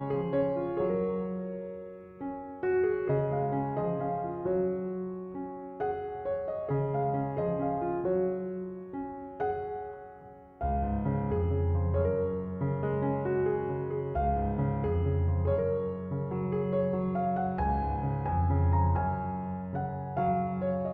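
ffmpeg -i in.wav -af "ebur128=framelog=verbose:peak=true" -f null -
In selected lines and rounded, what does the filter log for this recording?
Integrated loudness:
  I:         -31.2 LUFS
  Threshold: -41.3 LUFS
Loudness range:
  LRA:         3.5 LU
  Threshold: -51.4 LUFS
  LRA low:   -33.4 LUFS
  LRA high:  -29.9 LUFS
True peak:
  Peak:      -16.3 dBFS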